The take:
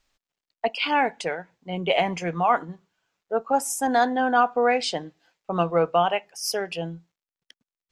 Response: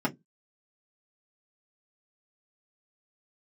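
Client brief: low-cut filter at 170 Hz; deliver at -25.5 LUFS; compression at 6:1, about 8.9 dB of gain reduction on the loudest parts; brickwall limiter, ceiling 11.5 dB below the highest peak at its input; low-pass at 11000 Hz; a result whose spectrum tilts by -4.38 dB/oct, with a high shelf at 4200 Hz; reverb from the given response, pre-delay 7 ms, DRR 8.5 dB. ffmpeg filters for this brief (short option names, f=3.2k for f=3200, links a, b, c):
-filter_complex "[0:a]highpass=170,lowpass=11k,highshelf=f=4.2k:g=-6,acompressor=threshold=-25dB:ratio=6,alimiter=level_in=2dB:limit=-24dB:level=0:latency=1,volume=-2dB,asplit=2[a][b];[1:a]atrim=start_sample=2205,adelay=7[c];[b][c]afir=irnorm=-1:irlink=0,volume=-18dB[d];[a][d]amix=inputs=2:normalize=0,volume=10dB"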